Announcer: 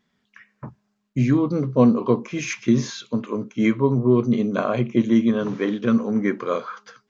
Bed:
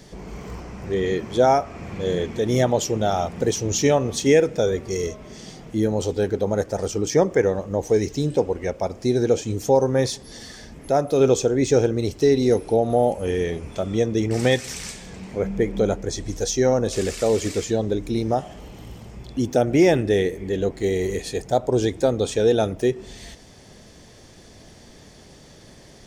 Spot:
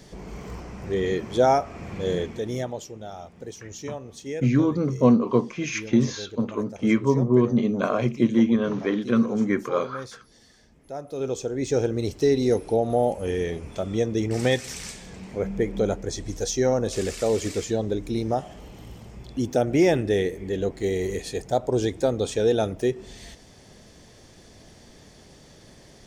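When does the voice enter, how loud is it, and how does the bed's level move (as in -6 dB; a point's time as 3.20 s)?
3.25 s, -1.5 dB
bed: 2.16 s -2 dB
2.94 s -16.5 dB
10.85 s -16.5 dB
11.96 s -3 dB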